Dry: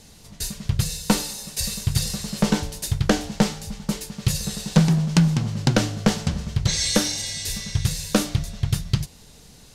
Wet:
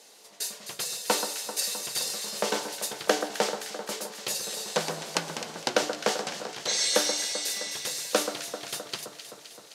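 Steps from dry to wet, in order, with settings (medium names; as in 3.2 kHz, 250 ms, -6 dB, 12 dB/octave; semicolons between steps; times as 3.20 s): ladder high-pass 360 Hz, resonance 25%; echo whose repeats swap between lows and highs 130 ms, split 1.6 kHz, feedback 80%, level -8 dB; trim +3.5 dB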